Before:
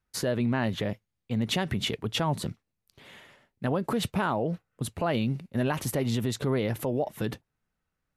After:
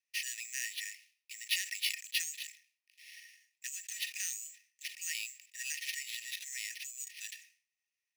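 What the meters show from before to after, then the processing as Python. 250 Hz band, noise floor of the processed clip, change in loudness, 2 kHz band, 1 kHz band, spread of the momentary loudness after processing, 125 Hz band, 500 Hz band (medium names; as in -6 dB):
under -40 dB, under -85 dBFS, -8.5 dB, -2.5 dB, under -40 dB, 17 LU, under -40 dB, under -40 dB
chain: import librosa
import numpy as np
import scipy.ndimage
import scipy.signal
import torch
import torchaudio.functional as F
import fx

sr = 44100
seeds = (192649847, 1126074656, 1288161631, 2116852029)

y = fx.sample_hold(x, sr, seeds[0], rate_hz=7500.0, jitter_pct=0)
y = scipy.signal.sosfilt(scipy.signal.cheby1(6, 9, 1800.0, 'highpass', fs=sr, output='sos'), y)
y = fx.sustainer(y, sr, db_per_s=140.0)
y = y * 10.0 ** (4.5 / 20.0)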